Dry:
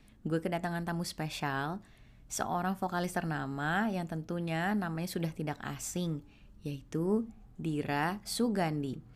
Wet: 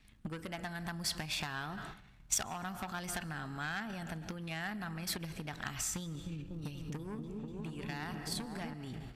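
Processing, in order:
high-shelf EQ 4,400 Hz −8 dB
comb and all-pass reverb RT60 1 s, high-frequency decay 0.95×, pre-delay 95 ms, DRR 15.5 dB
transient designer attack +12 dB, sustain +8 dB
soft clipping −23 dBFS, distortion −9 dB
0:06.02–0:08.74: echo whose low-pass opens from repeat to repeat 243 ms, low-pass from 400 Hz, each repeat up 1 octave, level 0 dB
noise gate −44 dBFS, range −6 dB
downward compressor, threshold −36 dBFS, peak gain reduction 13 dB
guitar amp tone stack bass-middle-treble 5-5-5
level +14 dB

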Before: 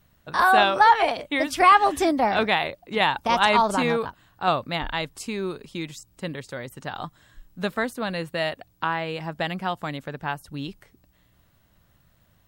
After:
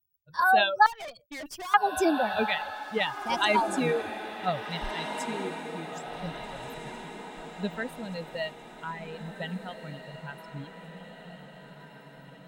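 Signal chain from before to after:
spectral dynamics exaggerated over time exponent 2
reverb reduction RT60 0.7 s
0:00.86–0:01.74: tube saturation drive 37 dB, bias 0.45
feedback delay with all-pass diffusion 1,679 ms, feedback 51%, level −9 dB

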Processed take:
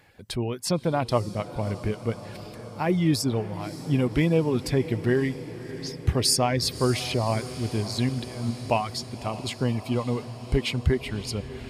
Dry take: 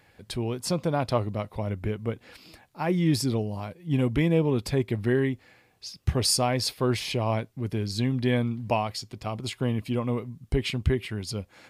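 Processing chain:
reverb reduction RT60 0.63 s
0:08.09–0:08.51: compressor whose output falls as the input rises −32 dBFS, ratio −0.5
feedback delay with all-pass diffusion 589 ms, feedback 70%, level −14.5 dB
level +2 dB

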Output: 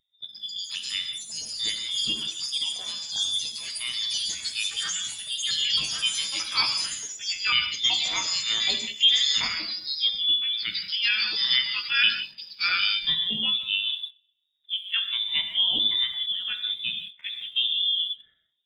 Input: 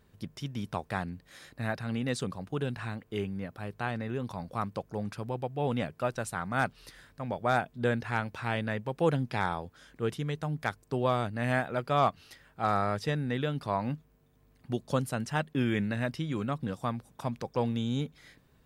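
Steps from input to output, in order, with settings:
pitch shifter gated in a rhythm +10 semitones, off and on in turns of 376 ms
voice inversion scrambler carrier 3,700 Hz
hum removal 65.18 Hz, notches 25
on a send: delay with a high-pass on its return 127 ms, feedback 50%, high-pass 1,700 Hz, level −19 dB
on the sum: delay with pitch and tempo change per echo 188 ms, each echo +6 semitones, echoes 3
reverb whose tail is shaped and stops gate 210 ms flat, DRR 3 dB
in parallel at −9.5 dB: bit-depth reduction 6 bits, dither none
on the sum: parametric band 150 Hz +8 dB 2.4 octaves
every bin expanded away from the loudest bin 1.5 to 1

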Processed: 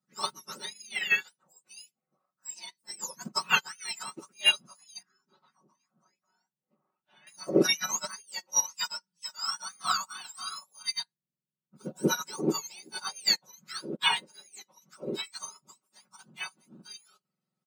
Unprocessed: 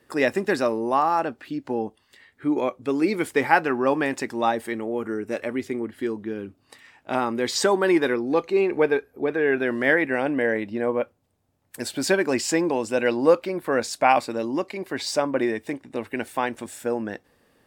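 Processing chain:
frequency axis turned over on the octave scale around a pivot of 1,500 Hz
0:05.02–0:07.27: head-to-tape spacing loss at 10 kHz 32 dB
comb filter 5.4 ms, depth 95%
expander for the loud parts 2.5 to 1, over −34 dBFS

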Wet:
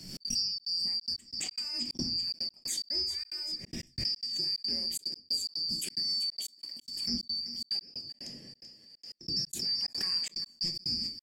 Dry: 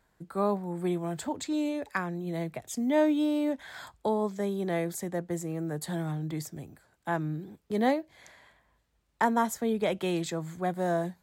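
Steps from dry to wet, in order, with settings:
band-splitting scrambler in four parts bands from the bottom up 2341
downward compressor 6 to 1, threshold −33 dBFS, peak gain reduction 13 dB
octave-band graphic EQ 125/250/500/1,000/8,000 Hz +4/+10/−5/−9/+5 dB
feedback echo with a high-pass in the loop 385 ms, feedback 48%, high-pass 470 Hz, level −12 dB
convolution reverb RT60 0.35 s, pre-delay 5 ms, DRR 3.5 dB
gate pattern "xx.xxxx.xxxx.x.." 181 BPM −60 dB
0:05.79–0:07.14: low-shelf EQ 210 Hz −9.5 dB
background raised ahead of every attack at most 52 dB per second

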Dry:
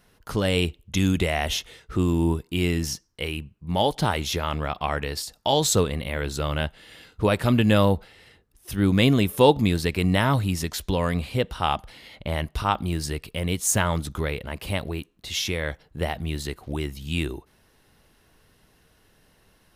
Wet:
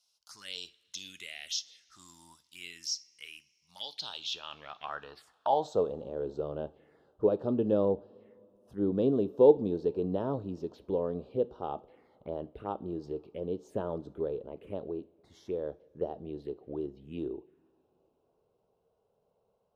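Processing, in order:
band-pass filter sweep 5,300 Hz → 430 Hz, 0:03.80–0:06.08
phaser swept by the level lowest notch 300 Hz, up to 2,100 Hz, full sweep at −34.5 dBFS
coupled-rooms reverb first 0.36 s, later 3.4 s, from −21 dB, DRR 14.5 dB

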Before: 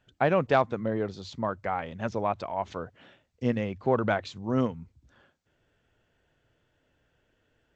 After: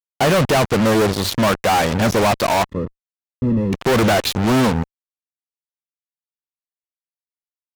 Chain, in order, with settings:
fuzz pedal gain 47 dB, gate −42 dBFS
0:02.69–0:03.73: moving average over 58 samples

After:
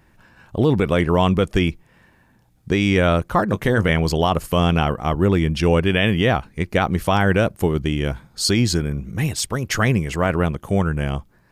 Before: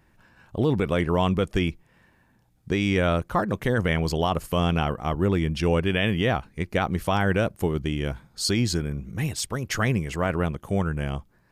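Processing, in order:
0:03.50–0:03.91: double-tracking delay 19 ms −11.5 dB
level +5.5 dB

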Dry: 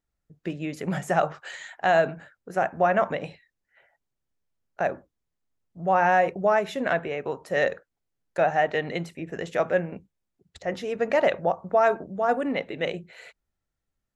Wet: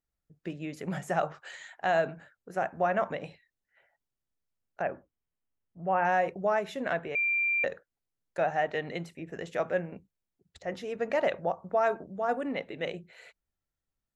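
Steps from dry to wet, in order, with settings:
0:04.82–0:06.05: linear-phase brick-wall low-pass 3,300 Hz
0:07.15–0:07.64: beep over 2,370 Hz −18.5 dBFS
level −6 dB

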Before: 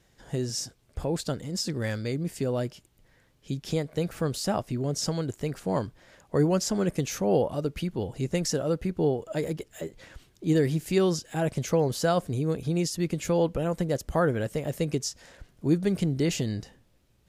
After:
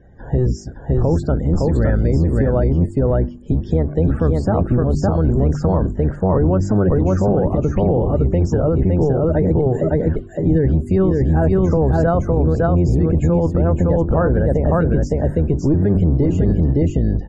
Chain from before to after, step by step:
sub-octave generator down 1 octave, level +1 dB
spectral peaks only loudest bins 64
flat-topped bell 3,500 Hz −13 dB
hum removal 48.97 Hz, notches 8
on a send: single-tap delay 562 ms −3 dB
on the sum: downward compressor 2.5 to 1, threshold −26 dBFS, peak gain reduction 7.5 dB
head-to-tape spacing loss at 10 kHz 24 dB
boost into a limiter +23.5 dB
level −7 dB

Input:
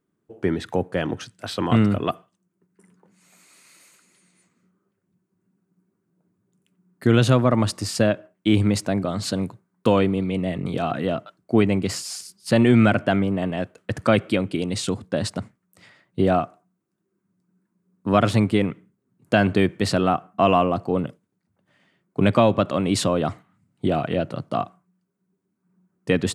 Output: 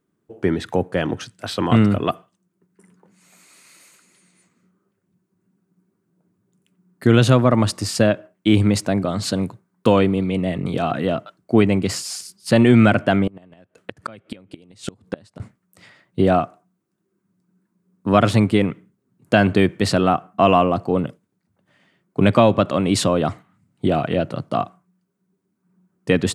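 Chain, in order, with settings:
0:13.27–0:15.40: gate with flip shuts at −16 dBFS, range −27 dB
level +3 dB

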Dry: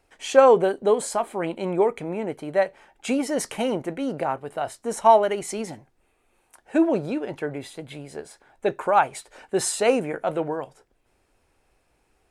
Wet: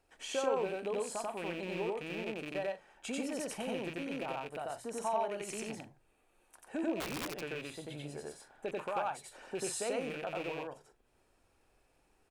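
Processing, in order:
loose part that buzzes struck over −34 dBFS, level −20 dBFS
mains-hum notches 60/120 Hz
downward compressor 2 to 1, threshold −36 dBFS, peak gain reduction 14.5 dB
notch filter 2,100 Hz, Q 16
on a send: loudspeakers that aren't time-aligned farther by 31 metres 0 dB, 45 metres −11 dB
0:07.00–0:07.41: on the sum: wrap-around overflow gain 25 dB
level −7.5 dB

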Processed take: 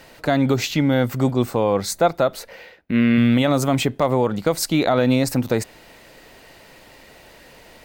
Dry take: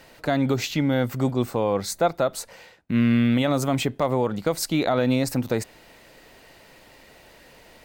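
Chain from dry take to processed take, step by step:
0:02.34–0:03.18: octave-band graphic EQ 125/500/1,000/2,000/8,000 Hz −6/+4/−4/+4/−11 dB
level +4 dB

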